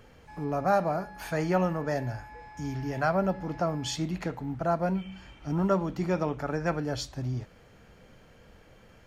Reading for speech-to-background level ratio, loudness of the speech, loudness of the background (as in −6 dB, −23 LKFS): 18.5 dB, −30.0 LKFS, −48.5 LKFS